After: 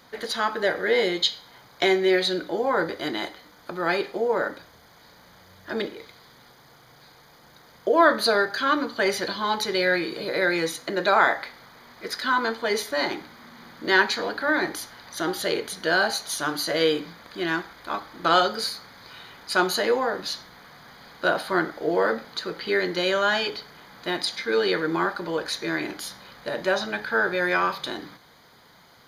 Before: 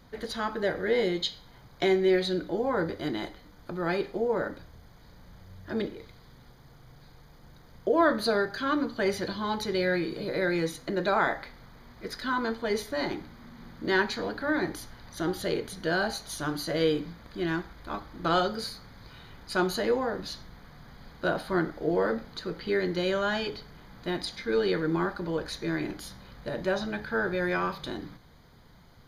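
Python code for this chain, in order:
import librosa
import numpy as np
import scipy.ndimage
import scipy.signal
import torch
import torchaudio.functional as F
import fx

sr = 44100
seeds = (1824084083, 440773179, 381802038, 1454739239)

y = fx.highpass(x, sr, hz=670.0, slope=6)
y = y * 10.0 ** (8.5 / 20.0)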